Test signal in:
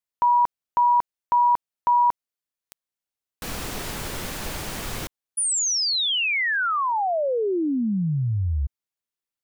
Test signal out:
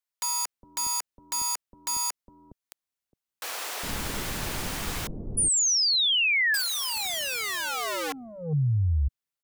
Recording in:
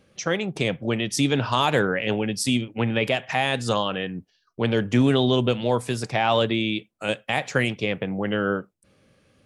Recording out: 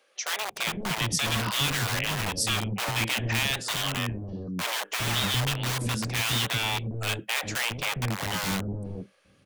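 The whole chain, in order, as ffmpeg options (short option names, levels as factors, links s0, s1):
-filter_complex "[0:a]acrossover=split=140|1800[s0][s1][s2];[s1]aeval=exprs='(mod(17.8*val(0)+1,2)-1)/17.8':c=same[s3];[s0][s3][s2]amix=inputs=3:normalize=0,acrossover=split=480[s4][s5];[s4]adelay=410[s6];[s6][s5]amix=inputs=2:normalize=0"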